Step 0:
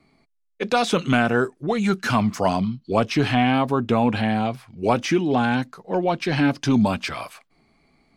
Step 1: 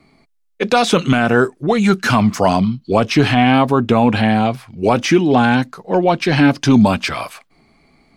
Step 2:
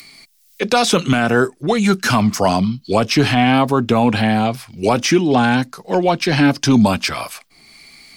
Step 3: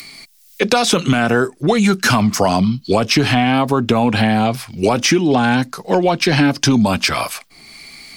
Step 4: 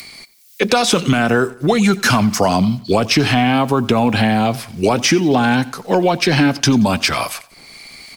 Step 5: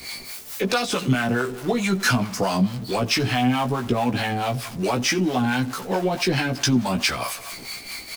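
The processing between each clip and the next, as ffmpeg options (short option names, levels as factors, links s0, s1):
-af "alimiter=level_in=2.66:limit=0.891:release=50:level=0:latency=1,volume=0.891"
-filter_complex "[0:a]equalizer=f=5200:w=3.4:g=4,acrossover=split=250|1900[s0][s1][s2];[s2]acompressor=mode=upward:threshold=0.0398:ratio=2.5[s3];[s0][s1][s3]amix=inputs=3:normalize=0,highshelf=f=7300:g=10,volume=0.841"
-af "acompressor=threshold=0.158:ratio=6,volume=1.88"
-filter_complex "[0:a]acrossover=split=700[s0][s1];[s0]acrusher=bits=7:mix=0:aa=0.000001[s2];[s2][s1]amix=inputs=2:normalize=0,aecho=1:1:89|178|267:0.1|0.04|0.016"
-filter_complex "[0:a]aeval=exprs='val(0)+0.5*0.075*sgn(val(0))':c=same,acrossover=split=590[s0][s1];[s0]aeval=exprs='val(0)*(1-0.7/2+0.7/2*cos(2*PI*4.6*n/s))':c=same[s2];[s1]aeval=exprs='val(0)*(1-0.7/2-0.7/2*cos(2*PI*4.6*n/s))':c=same[s3];[s2][s3]amix=inputs=2:normalize=0,asplit=2[s4][s5];[s5]adelay=16,volume=0.631[s6];[s4][s6]amix=inputs=2:normalize=0,volume=0.447"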